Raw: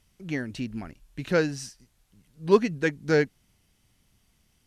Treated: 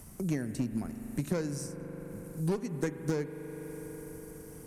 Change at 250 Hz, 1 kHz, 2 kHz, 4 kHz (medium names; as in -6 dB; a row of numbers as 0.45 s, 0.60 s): -4.0 dB, -12.0 dB, -14.5 dB, -11.0 dB